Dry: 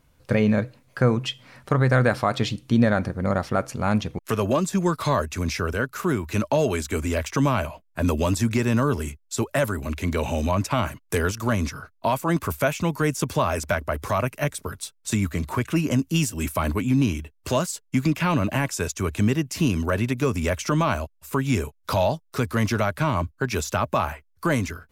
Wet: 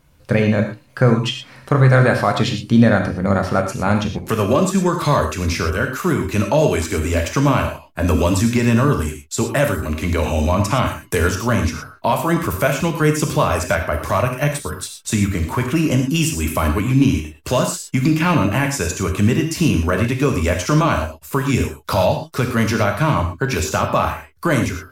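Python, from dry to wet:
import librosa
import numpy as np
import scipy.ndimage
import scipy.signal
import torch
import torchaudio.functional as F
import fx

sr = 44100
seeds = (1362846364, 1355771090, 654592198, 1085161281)

y = fx.rev_gated(x, sr, seeds[0], gate_ms=140, shape='flat', drr_db=3.5)
y = F.gain(torch.from_numpy(y), 4.5).numpy()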